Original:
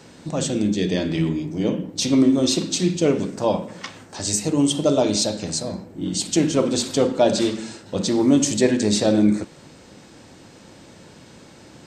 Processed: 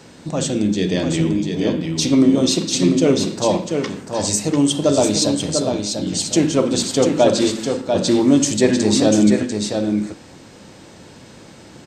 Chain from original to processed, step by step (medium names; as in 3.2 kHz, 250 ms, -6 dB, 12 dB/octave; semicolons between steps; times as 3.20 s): delay 694 ms -5.5 dB; trim +2.5 dB